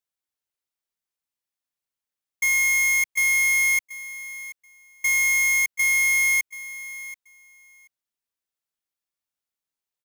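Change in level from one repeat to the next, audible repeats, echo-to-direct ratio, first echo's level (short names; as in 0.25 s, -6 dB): -16.5 dB, 2, -16.0 dB, -16.0 dB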